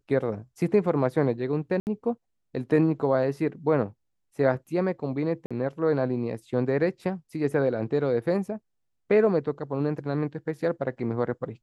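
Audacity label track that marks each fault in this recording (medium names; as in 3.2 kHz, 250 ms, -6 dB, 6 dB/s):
1.800000	1.870000	dropout 69 ms
5.460000	5.510000	dropout 46 ms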